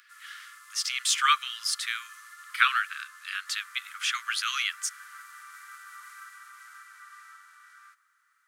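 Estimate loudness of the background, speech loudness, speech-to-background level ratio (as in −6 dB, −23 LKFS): −47.5 LKFS, −28.0 LKFS, 19.5 dB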